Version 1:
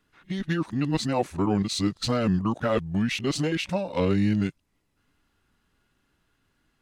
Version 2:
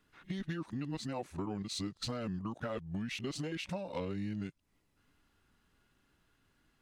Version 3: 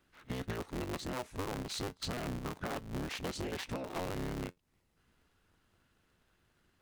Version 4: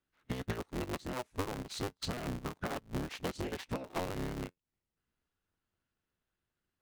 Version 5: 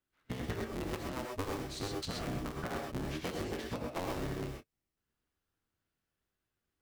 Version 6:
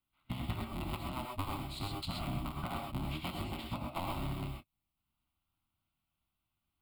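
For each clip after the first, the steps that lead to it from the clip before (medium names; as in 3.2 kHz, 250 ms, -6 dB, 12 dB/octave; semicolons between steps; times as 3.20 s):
compression 6:1, threshold -34 dBFS, peak gain reduction 14.5 dB; trim -2 dB
cycle switcher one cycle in 3, inverted; feedback comb 89 Hz, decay 0.15 s, harmonics all, mix 40%; trim +2 dB
upward expansion 2.5:1, over -48 dBFS; trim +4.5 dB
gated-style reverb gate 150 ms rising, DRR 0.5 dB; trim -2.5 dB
static phaser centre 1.7 kHz, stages 6; trim +3 dB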